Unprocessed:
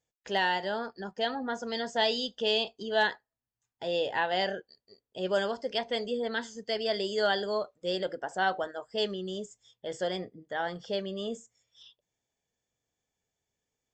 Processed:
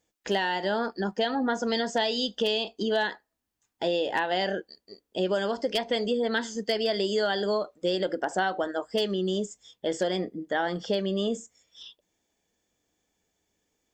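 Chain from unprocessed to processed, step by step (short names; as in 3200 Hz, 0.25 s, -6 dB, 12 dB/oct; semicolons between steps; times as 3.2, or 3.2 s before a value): thirty-one-band EQ 125 Hz -12 dB, 200 Hz +4 dB, 315 Hz +8 dB; compressor 16:1, threshold -31 dBFS, peak gain reduction 11 dB; wavefolder -24 dBFS; gain +8.5 dB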